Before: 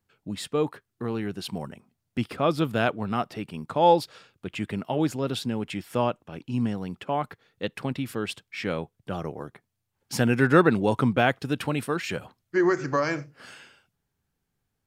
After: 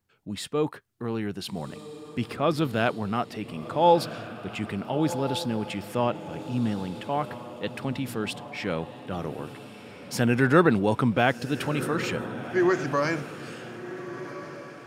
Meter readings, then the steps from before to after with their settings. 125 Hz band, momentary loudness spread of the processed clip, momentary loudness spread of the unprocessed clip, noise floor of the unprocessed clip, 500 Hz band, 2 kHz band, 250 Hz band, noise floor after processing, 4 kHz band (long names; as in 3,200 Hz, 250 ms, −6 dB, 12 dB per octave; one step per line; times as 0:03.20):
0.0 dB, 16 LU, 15 LU, −80 dBFS, −0.5 dB, 0.0 dB, 0.0 dB, −45 dBFS, +0.5 dB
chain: feedback delay with all-pass diffusion 1,417 ms, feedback 42%, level −13 dB
transient designer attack −2 dB, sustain +2 dB